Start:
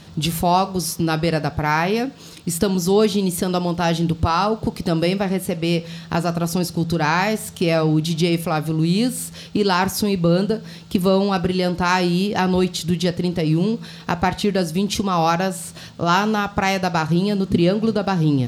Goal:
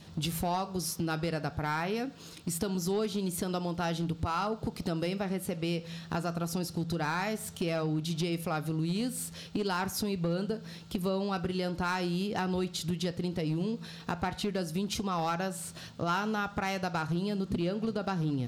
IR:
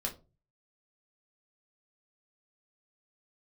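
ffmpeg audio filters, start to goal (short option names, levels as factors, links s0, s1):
-af "acompressor=threshold=0.0794:ratio=2.5,aeval=exprs='clip(val(0),-1,0.126)':c=same,adynamicequalizer=threshold=0.00501:dfrequency=1400:dqfactor=7.9:tfrequency=1400:tqfactor=7.9:attack=5:release=100:ratio=0.375:range=2.5:mode=boostabove:tftype=bell,volume=0.398"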